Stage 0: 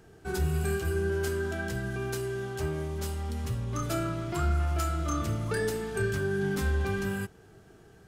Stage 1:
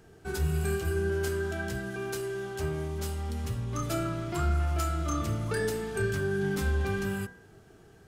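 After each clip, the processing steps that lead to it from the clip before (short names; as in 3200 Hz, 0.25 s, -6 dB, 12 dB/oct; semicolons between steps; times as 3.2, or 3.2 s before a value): de-hum 61.57 Hz, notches 32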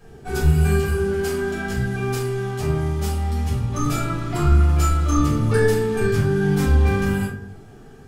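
shoebox room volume 280 m³, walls furnished, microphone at 5.8 m; gain -1.5 dB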